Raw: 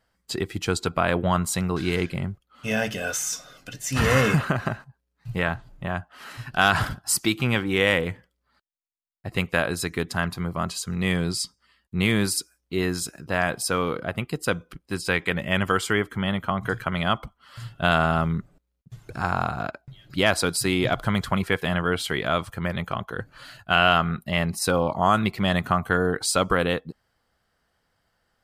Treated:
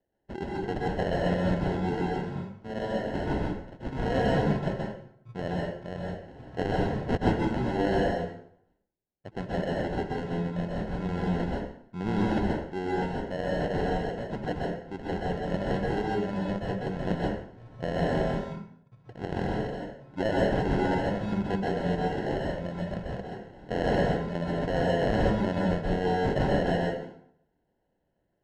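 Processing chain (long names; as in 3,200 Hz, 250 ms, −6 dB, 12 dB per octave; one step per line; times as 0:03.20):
high-pass filter 370 Hz 6 dB per octave
parametric band 1,700 Hz −14.5 dB 1.1 octaves
decimation without filtering 37×
head-to-tape spacing loss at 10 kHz 26 dB
dense smooth reverb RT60 0.65 s, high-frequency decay 0.8×, pre-delay 115 ms, DRR −3.5 dB
level −2 dB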